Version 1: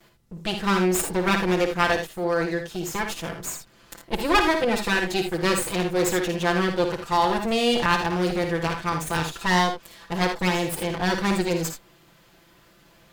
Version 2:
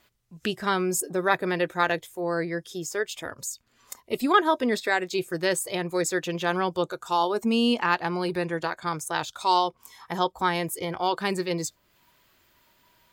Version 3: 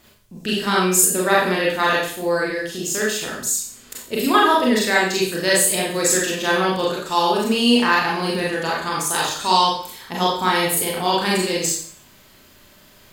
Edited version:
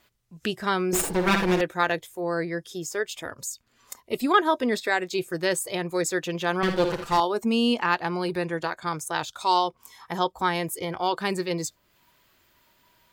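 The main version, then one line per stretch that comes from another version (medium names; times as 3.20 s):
2
0.93–1.61 s: from 1
6.63–7.20 s: from 1
not used: 3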